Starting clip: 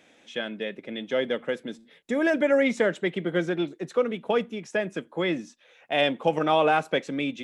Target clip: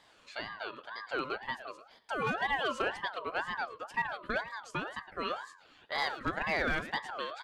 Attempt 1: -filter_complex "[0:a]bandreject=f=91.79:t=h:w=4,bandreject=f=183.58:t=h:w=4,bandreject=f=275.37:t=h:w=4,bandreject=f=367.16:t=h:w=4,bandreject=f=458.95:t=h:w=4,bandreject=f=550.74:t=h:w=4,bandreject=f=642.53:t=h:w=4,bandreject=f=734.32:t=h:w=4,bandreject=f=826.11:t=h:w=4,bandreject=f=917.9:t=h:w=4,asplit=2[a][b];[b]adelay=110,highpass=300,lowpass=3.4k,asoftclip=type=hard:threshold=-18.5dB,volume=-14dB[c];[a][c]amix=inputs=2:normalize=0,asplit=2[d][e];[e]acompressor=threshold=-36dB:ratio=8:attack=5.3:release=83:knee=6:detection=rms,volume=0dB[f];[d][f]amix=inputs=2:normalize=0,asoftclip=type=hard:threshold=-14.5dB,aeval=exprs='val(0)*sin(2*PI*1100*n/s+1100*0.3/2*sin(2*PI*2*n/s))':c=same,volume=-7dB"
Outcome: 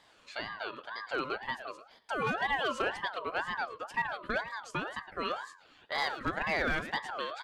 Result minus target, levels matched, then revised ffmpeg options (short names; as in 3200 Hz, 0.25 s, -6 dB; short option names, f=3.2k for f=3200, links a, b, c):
compressor: peak gain reduction -8.5 dB
-filter_complex "[0:a]bandreject=f=91.79:t=h:w=4,bandreject=f=183.58:t=h:w=4,bandreject=f=275.37:t=h:w=4,bandreject=f=367.16:t=h:w=4,bandreject=f=458.95:t=h:w=4,bandreject=f=550.74:t=h:w=4,bandreject=f=642.53:t=h:w=4,bandreject=f=734.32:t=h:w=4,bandreject=f=826.11:t=h:w=4,bandreject=f=917.9:t=h:w=4,asplit=2[a][b];[b]adelay=110,highpass=300,lowpass=3.4k,asoftclip=type=hard:threshold=-18.5dB,volume=-14dB[c];[a][c]amix=inputs=2:normalize=0,asplit=2[d][e];[e]acompressor=threshold=-45.5dB:ratio=8:attack=5.3:release=83:knee=6:detection=rms,volume=0dB[f];[d][f]amix=inputs=2:normalize=0,asoftclip=type=hard:threshold=-14.5dB,aeval=exprs='val(0)*sin(2*PI*1100*n/s+1100*0.3/2*sin(2*PI*2*n/s))':c=same,volume=-7dB"